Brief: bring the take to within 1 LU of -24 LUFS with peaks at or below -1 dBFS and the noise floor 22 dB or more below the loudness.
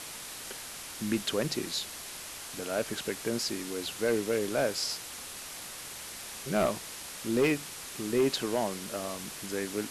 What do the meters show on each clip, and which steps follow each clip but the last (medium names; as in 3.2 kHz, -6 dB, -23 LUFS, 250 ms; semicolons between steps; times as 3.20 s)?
clipped samples 0.3%; clipping level -19.5 dBFS; noise floor -43 dBFS; noise floor target -55 dBFS; loudness -32.5 LUFS; peak level -19.5 dBFS; loudness target -24.0 LUFS
-> clip repair -19.5 dBFS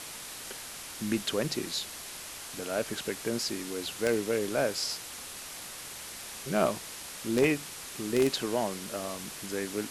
clipped samples 0.0%; noise floor -43 dBFS; noise floor target -55 dBFS
-> noise reduction 12 dB, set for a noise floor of -43 dBFS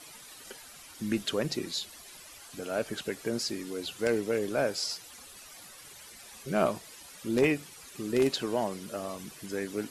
noise floor -50 dBFS; noise floor target -54 dBFS
-> noise reduction 6 dB, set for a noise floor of -50 dBFS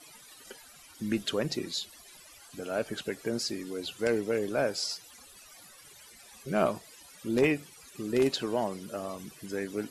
noise floor -54 dBFS; loudness -32.0 LUFS; peak level -11.5 dBFS; loudness target -24.0 LUFS
-> trim +8 dB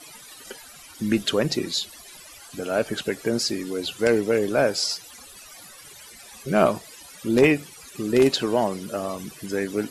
loudness -24.0 LUFS; peak level -3.5 dBFS; noise floor -46 dBFS